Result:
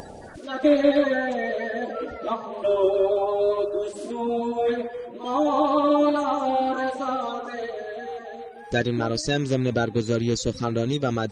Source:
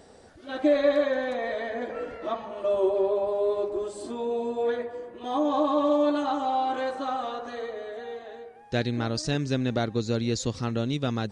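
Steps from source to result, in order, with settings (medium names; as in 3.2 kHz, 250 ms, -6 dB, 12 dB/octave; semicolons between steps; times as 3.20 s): coarse spectral quantiser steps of 30 dB; upward compressor, threshold -36 dBFS; trim +4 dB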